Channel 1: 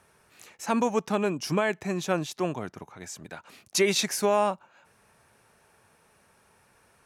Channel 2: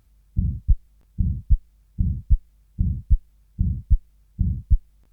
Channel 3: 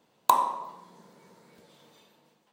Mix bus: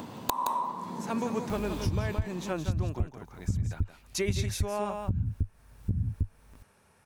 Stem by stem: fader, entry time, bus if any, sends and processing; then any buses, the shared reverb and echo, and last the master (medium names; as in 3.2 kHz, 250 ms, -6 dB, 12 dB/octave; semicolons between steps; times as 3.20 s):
-18.5 dB, 0.40 s, no bus, no send, echo send -7 dB, level rider gain up to 15 dB
-11.5 dB, 1.50 s, bus A, no send, no echo send, bass shelf 330 Hz -10.5 dB; upward compressor, threshold -11 dBFS
+0.5 dB, 0.00 s, bus A, no send, echo send -8.5 dB, upward compressor, threshold -34 dBFS
bus A: 0.0 dB, fifteen-band graphic EQ 100 Hz +12 dB, 250 Hz +10 dB, 1 kHz +7 dB; compression, threshold -23 dBFS, peak gain reduction 15 dB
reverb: none
echo: delay 170 ms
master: bass shelf 200 Hz +6.5 dB; compression 5:1, threshold -25 dBFS, peak gain reduction 8 dB